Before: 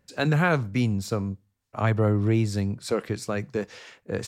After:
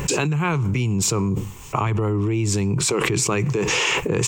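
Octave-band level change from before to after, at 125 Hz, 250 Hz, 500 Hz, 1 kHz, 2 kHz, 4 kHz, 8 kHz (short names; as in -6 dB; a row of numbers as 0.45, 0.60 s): +4.0, +3.0, +3.5, +5.5, +6.0, +13.0, +19.0 dB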